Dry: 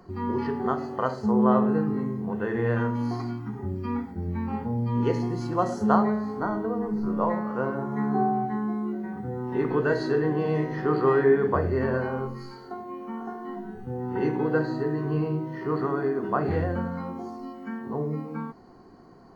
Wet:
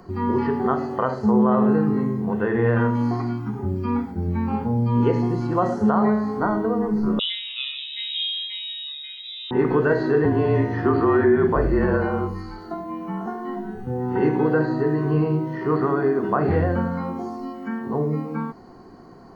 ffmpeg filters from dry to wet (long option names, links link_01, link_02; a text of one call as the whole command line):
ffmpeg -i in.wav -filter_complex "[0:a]asettb=1/sr,asplit=3[link_01][link_02][link_03];[link_01]atrim=end=3.334[link_04];[link_02]atrim=start=3.33:end=5.5,asetpts=PTS-STARTPTS,afade=type=in:duration=0.004:curve=qsin,afade=type=out:start_time=2.166:duration=0.004:curve=qsin,bandreject=frequency=1900:width=12[link_05];[link_03]atrim=start=5.496[link_06];[link_04][link_05]acrossfade=duration=0.004:curve1=hsin:curve2=qsin[link_07];[link_07][link_06]acrossfade=duration=0.004:curve1=qsin:curve2=hsin,asettb=1/sr,asplit=3[link_08][link_09][link_10];[link_08]atrim=end=7.194[link_11];[link_09]atrim=start=7.19:end=9.51,asetpts=PTS-STARTPTS,afade=type=in:duration=0.004:curve=qsin,afade=type=out:start_time=2.316:duration=0.004:curve=qsin,lowpass=frequency=3400:width_type=q:width=0.5098,lowpass=frequency=3400:width_type=q:width=0.6013,lowpass=frequency=3400:width_type=q:width=0.9,lowpass=frequency=3400:width_type=q:width=2.563,afreqshift=-4000[link_12];[link_10]atrim=start=9.506[link_13];[link_11][link_12]acrossfade=duration=0.004:curve1=hsin:curve2=qsin[link_14];[link_14][link_13]acrossfade=duration=0.004:curve1=qsin:curve2=hsin,asettb=1/sr,asplit=3[link_15][link_16][link_17];[link_15]atrim=end=10.254[link_18];[link_16]atrim=start=10.25:end=13.26,asetpts=PTS-STARTPTS,afade=type=in:duration=0.004:curve=qsin,afade=type=out:start_time=3.006:duration=0.004:curve=qsin,afreqshift=-36[link_19];[link_17]atrim=start=13.256[link_20];[link_18][link_19]acrossfade=duration=0.004:curve1=hsin:curve2=qsin[link_21];[link_21][link_20]acrossfade=duration=0.004:curve1=qsin:curve2=hsin,acrossover=split=2900[link_22][link_23];[link_23]acompressor=threshold=-60dB:ratio=4:attack=1:release=60[link_24];[link_22][link_24]amix=inputs=2:normalize=0,alimiter=level_in=14.5dB:limit=-1dB:release=50:level=0:latency=1,volume=-8.5dB" out.wav